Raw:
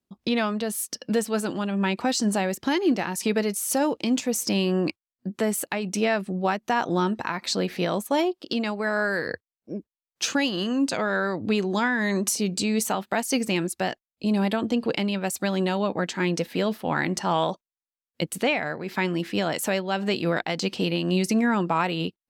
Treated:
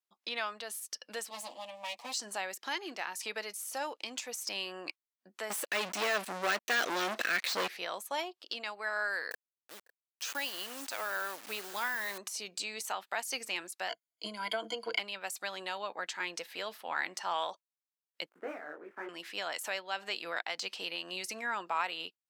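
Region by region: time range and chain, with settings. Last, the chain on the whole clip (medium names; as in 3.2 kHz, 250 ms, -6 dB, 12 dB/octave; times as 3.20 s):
1.30–2.14 s: comb filter that takes the minimum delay 8.4 ms + static phaser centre 390 Hz, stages 6
5.50–7.68 s: Butterworth band-stop 970 Hz, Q 0.95 + waveshaping leveller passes 5
9.31–12.18 s: send-on-delta sampling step -32.5 dBFS + treble shelf 9.2 kHz +7.5 dB + delay 553 ms -23 dB
13.89–14.99 s: rippled EQ curve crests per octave 1.8, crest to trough 18 dB + compression 5:1, threshold -16 dBFS + transient shaper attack +5 dB, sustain 0 dB
18.29–19.09 s: dead-time distortion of 0.11 ms + FFT filter 170 Hz 0 dB, 310 Hz +13 dB, 950 Hz -5 dB, 1.4 kHz +1 dB, 4.1 kHz -27 dB + detune thickener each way 56 cents
whole clip: de-esser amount 50%; high-pass 890 Hz 12 dB/octave; trim -6 dB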